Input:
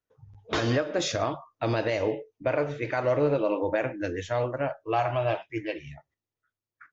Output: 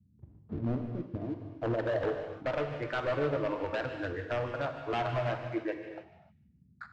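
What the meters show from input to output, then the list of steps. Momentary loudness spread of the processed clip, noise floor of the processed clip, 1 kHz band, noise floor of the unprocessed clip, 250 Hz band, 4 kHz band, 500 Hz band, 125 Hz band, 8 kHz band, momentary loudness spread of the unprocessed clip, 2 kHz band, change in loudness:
8 LU, −65 dBFS, −6.0 dB, below −85 dBFS, −4.5 dB, −10.0 dB, −6.0 dB, −4.0 dB, can't be measured, 8 LU, −5.0 dB, −6.0 dB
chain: reverb reduction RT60 0.61 s
in parallel at +0.5 dB: downward compressor, threshold −41 dBFS, peak gain reduction 18.5 dB
on the sum: low-pass filter sweep 220 Hz → 1,500 Hz, 0:00.94–0:02.71
dead-zone distortion −44.5 dBFS
high-pass filter sweep 62 Hz → 750 Hz, 0:04.92–0:06.15
wave folding −18 dBFS
Gaussian smoothing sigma 1.6 samples
noise in a band 63–210 Hz −57 dBFS
on a send: delay with a high-pass on its return 149 ms, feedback 32%, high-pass 2,700 Hz, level −12 dB
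on the sum: reverb whose tail is shaped and stops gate 330 ms flat, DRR 5 dB
level −7 dB

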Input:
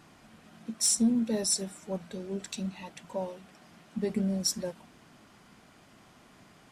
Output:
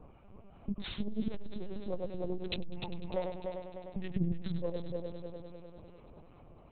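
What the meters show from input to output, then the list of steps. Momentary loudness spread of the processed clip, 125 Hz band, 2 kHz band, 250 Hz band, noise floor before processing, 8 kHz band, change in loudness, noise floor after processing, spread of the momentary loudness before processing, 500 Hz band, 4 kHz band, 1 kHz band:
21 LU, +0.5 dB, −2.0 dB, −7.0 dB, −58 dBFS, below −40 dB, −9.0 dB, −57 dBFS, 17 LU, −2.0 dB, −10.5 dB, −2.0 dB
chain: adaptive Wiener filter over 25 samples
gain on a spectral selection 0:03.75–0:04.44, 360–1,500 Hz −10 dB
reverb reduction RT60 0.69 s
high-shelf EQ 3,000 Hz +5 dB
frequency shifter −25 Hz
low-shelf EQ 100 Hz −2 dB
two-band tremolo in antiphase 2.6 Hz, depth 70%, crossover 990 Hz
on a send: echo machine with several playback heads 100 ms, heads first and third, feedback 62%, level −8 dB
on the sum: linear-prediction vocoder at 8 kHz pitch kept
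saturating transformer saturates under 130 Hz
level +8 dB

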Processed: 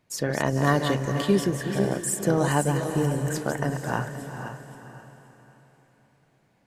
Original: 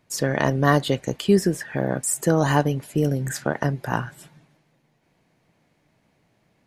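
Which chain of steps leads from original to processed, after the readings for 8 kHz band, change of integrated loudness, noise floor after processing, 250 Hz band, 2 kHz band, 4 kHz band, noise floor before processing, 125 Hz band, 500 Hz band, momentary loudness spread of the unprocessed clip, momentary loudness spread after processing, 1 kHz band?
−2.5 dB, −3.0 dB, −65 dBFS, −2.5 dB, −2.5 dB, −2.5 dB, −67 dBFS, −2.0 dB, −2.5 dB, 7 LU, 14 LU, −2.5 dB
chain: feedback delay that plays each chunk backwards 264 ms, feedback 47%, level −7 dB
feedback delay with all-pass diffusion 457 ms, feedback 40%, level −10 dB
level −4 dB

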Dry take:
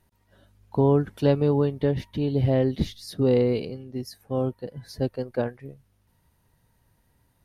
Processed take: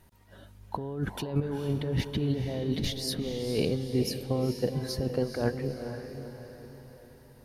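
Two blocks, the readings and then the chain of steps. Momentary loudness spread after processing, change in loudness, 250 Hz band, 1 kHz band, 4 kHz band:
14 LU, −6.0 dB, −5.0 dB, −5.5 dB, +4.5 dB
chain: compressor whose output falls as the input rises −30 dBFS, ratio −1
on a send: feedback delay with all-pass diffusion 460 ms, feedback 49%, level −8 dB

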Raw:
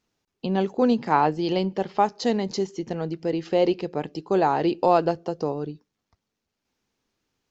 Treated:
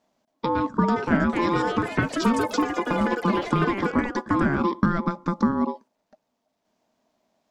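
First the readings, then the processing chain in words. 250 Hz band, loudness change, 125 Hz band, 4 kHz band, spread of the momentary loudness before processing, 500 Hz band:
+3.0 dB, +0.5 dB, +4.0 dB, −1.0 dB, 10 LU, −4.5 dB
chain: downward compressor 6 to 1, threshold −25 dBFS, peak gain reduction 11.5 dB
ring modulation 690 Hz
hollow resonant body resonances 230/630 Hz, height 15 dB, ringing for 35 ms
delay with pitch and tempo change per echo 571 ms, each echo +6 semitones, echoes 3, each echo −6 dB
level +3.5 dB

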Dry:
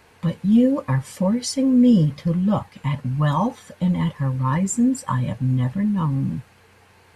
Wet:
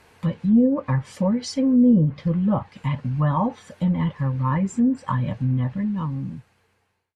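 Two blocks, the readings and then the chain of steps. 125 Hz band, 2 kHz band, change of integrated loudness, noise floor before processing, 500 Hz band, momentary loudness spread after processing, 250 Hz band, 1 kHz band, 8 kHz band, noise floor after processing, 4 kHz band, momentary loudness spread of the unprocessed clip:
−1.5 dB, −2.5 dB, −1.5 dB, −54 dBFS, −1.5 dB, 10 LU, −1.0 dB, −1.5 dB, below −10 dB, −68 dBFS, −5.0 dB, 9 LU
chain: fade-out on the ending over 1.74 s
treble cut that deepens with the level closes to 780 Hz, closed at −12.5 dBFS
level −1 dB

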